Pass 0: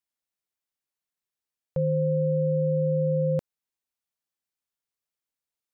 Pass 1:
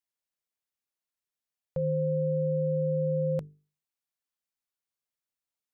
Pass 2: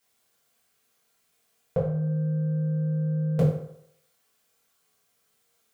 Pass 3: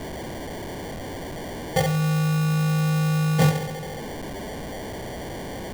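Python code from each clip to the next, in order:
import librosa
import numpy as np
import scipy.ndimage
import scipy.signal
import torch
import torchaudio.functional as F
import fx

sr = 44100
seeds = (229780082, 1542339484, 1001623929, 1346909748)

y1 = fx.hum_notches(x, sr, base_hz=50, count=9)
y1 = y1 * 10.0 ** (-3.0 / 20.0)
y2 = fx.over_compress(y1, sr, threshold_db=-33.0, ratio=-0.5)
y2 = fx.rev_fdn(y2, sr, rt60_s=0.73, lf_ratio=0.8, hf_ratio=0.7, size_ms=13.0, drr_db=-8.5)
y2 = y2 * 10.0 ** (5.5 / 20.0)
y3 = y2 + 0.5 * 10.0 ** (-30.0 / 20.0) * np.sign(y2)
y3 = fx.sample_hold(y3, sr, seeds[0], rate_hz=1300.0, jitter_pct=0)
y3 = y3 * 10.0 ** (2.5 / 20.0)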